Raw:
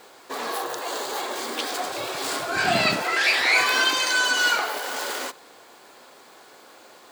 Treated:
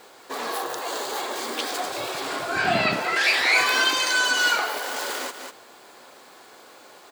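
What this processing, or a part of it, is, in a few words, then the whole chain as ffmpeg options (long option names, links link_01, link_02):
ducked delay: -filter_complex "[0:a]asplit=3[link_01][link_02][link_03];[link_02]adelay=196,volume=-6dB[link_04];[link_03]apad=whole_len=322504[link_05];[link_04][link_05]sidechaincompress=threshold=-38dB:ratio=8:attack=37:release=203[link_06];[link_01][link_06]amix=inputs=2:normalize=0,asettb=1/sr,asplit=3[link_07][link_08][link_09];[link_07]atrim=end=2.204[link_10];[link_08]atrim=start=2.2:end=3.16,asetpts=PTS-STARTPTS,afade=type=in:duration=0.004:curve=qsin,afade=type=out:start_time=0.956:duration=0.004:curve=qsin,acrossover=split=3700[link_11][link_12];[link_12]acompressor=threshold=-38dB:ratio=4:attack=1:release=60[link_13];[link_11][link_13]amix=inputs=2:normalize=0[link_14];[link_09]atrim=start=3.156[link_15];[link_10][link_14]acrossfade=duration=0.004:curve1=hsin:curve2=qsin[link_16];[link_16][link_15]acrossfade=duration=0.004:curve1=qsin:curve2=hsin"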